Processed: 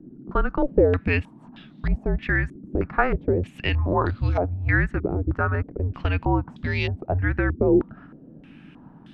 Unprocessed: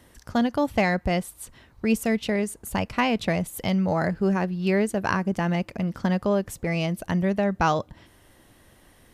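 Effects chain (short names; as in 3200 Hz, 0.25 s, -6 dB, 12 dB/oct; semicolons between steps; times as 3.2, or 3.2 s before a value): frequency shift -270 Hz; band noise 130–300 Hz -48 dBFS; stepped low-pass 3.2 Hz 370–3500 Hz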